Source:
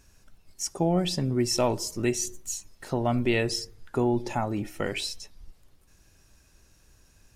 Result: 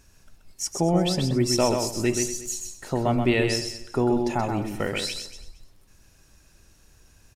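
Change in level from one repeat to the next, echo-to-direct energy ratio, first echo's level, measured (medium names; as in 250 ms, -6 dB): no regular repeats, -5.0 dB, -5.5 dB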